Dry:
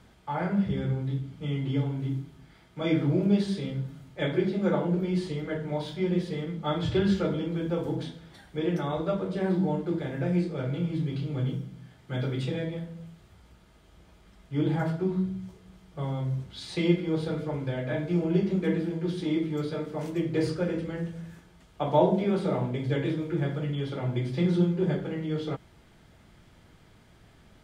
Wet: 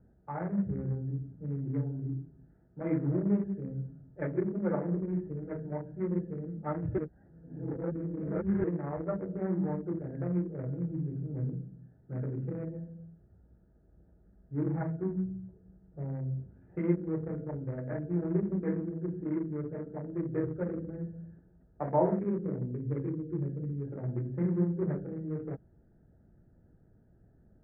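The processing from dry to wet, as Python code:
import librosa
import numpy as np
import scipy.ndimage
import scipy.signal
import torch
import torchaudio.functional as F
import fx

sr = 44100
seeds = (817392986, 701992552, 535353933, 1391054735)

y = fx.band_shelf(x, sr, hz=980.0, db=-13.5, octaves=1.7, at=(22.19, 23.85))
y = fx.edit(y, sr, fx.reverse_span(start_s=6.98, length_s=1.66), tone=tone)
y = fx.wiener(y, sr, points=41)
y = scipy.signal.sosfilt(scipy.signal.butter(8, 2000.0, 'lowpass', fs=sr, output='sos'), y)
y = y * 10.0 ** (-4.5 / 20.0)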